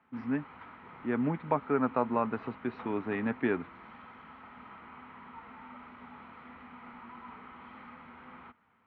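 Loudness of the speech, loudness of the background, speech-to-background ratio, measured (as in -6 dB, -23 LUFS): -32.5 LUFS, -49.5 LUFS, 17.0 dB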